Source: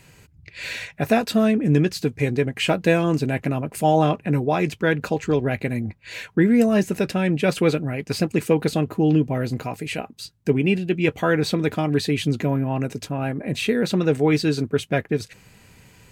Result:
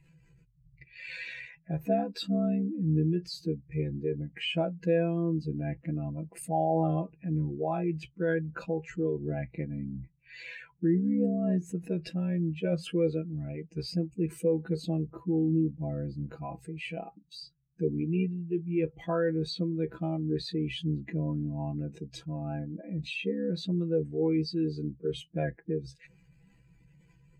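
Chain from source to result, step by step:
expanding power law on the bin magnitudes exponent 1.9
time stretch by overlap-add 1.7×, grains 29 ms
level −8.5 dB

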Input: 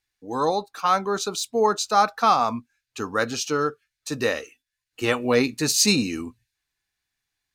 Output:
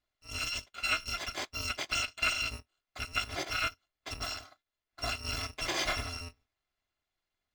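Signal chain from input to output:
samples in bit-reversed order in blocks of 256 samples
downward compressor 3 to 1, threshold −21 dBFS, peak gain reduction 7 dB
high-frequency loss of the air 170 metres
level +1 dB

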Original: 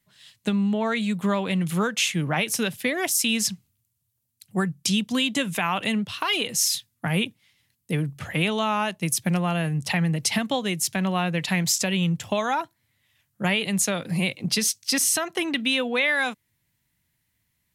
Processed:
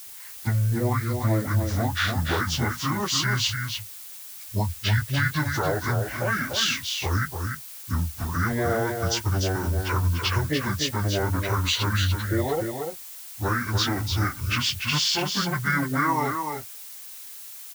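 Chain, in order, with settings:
phase-vocoder pitch shift without resampling −10.5 semitones
background noise blue −42 dBFS
single-tap delay 294 ms −5.5 dB

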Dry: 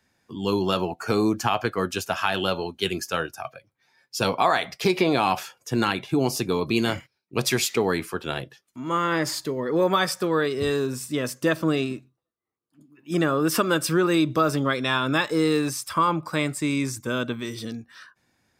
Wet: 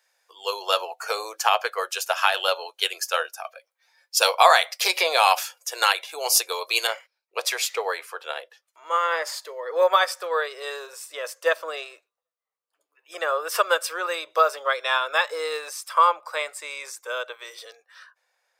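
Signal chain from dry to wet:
high-shelf EQ 3,700 Hz +6.5 dB, from 0:04.17 +12 dB, from 0:06.87 −2 dB
elliptic high-pass filter 500 Hz, stop band 50 dB
expander for the loud parts 1.5 to 1, over −31 dBFS
level +6 dB

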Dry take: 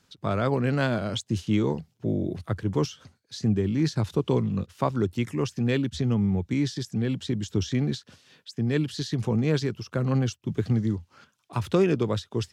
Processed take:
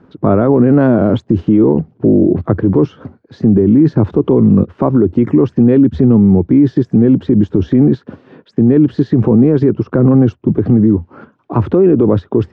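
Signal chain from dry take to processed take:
Chebyshev low-pass filter 1,100 Hz, order 2
parametric band 310 Hz +12.5 dB 1.6 octaves
boost into a limiter +17.5 dB
level −1 dB

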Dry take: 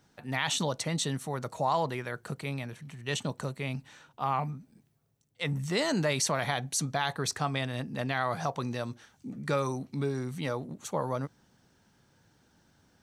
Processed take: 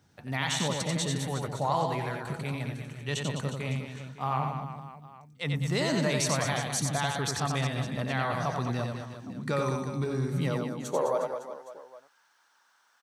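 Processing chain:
high-pass filter sweep 80 Hz → 1,100 Hz, 0:10.03–0:11.52
on a send: reverse bouncing-ball delay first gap 90 ms, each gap 1.3×, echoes 5
on the sum: level −1.5 dB

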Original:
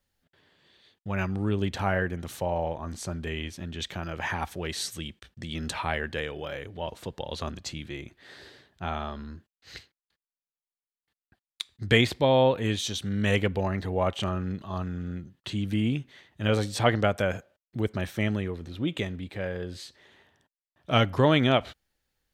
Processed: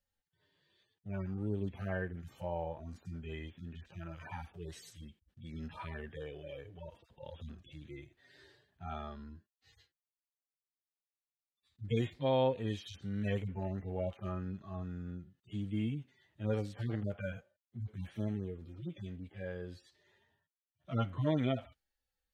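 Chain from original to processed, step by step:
harmonic-percussive split with one part muted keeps harmonic
level −8.5 dB

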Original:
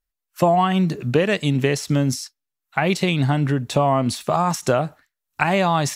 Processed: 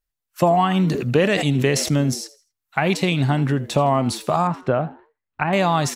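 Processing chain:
0:04.47–0:05.53: high-frequency loss of the air 480 metres
echo with shifted repeats 81 ms, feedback 33%, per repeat +100 Hz, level −18.5 dB
0:00.79–0:01.97: level that may fall only so fast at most 48 dB per second

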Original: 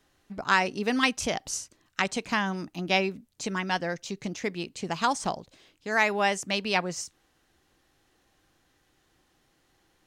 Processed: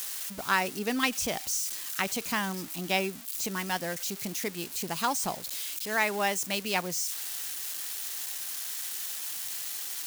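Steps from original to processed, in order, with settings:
spike at every zero crossing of −23.5 dBFS
level −3.5 dB

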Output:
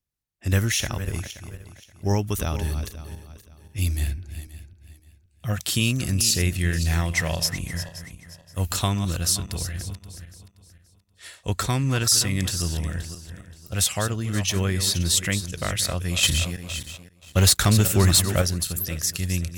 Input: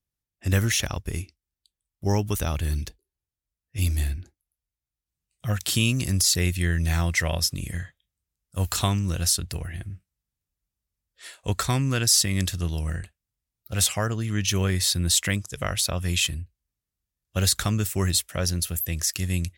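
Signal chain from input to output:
feedback delay that plays each chunk backwards 263 ms, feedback 51%, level −11 dB
0:16.23–0:18.42: leveller curve on the samples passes 2

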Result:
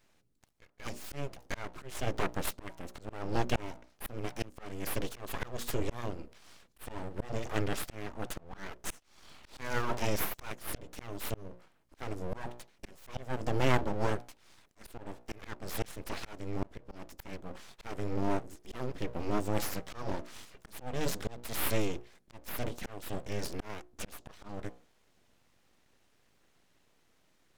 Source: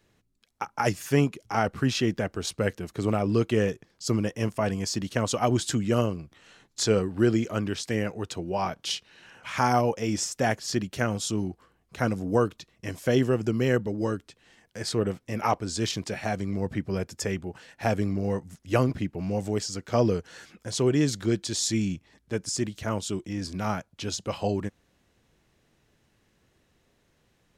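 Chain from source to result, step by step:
mains-hum notches 60/120/180/240/300/360/420/480 Hz
volume swells 415 ms
full-wave rectification

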